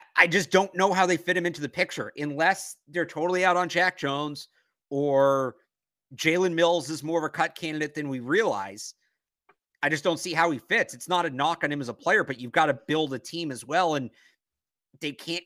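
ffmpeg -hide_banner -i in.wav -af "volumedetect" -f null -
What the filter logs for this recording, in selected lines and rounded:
mean_volume: -26.7 dB
max_volume: -2.9 dB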